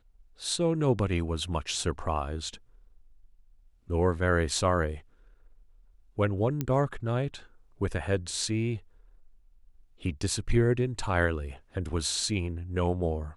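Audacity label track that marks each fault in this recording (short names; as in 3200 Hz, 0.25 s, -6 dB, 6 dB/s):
6.610000	6.610000	pop -16 dBFS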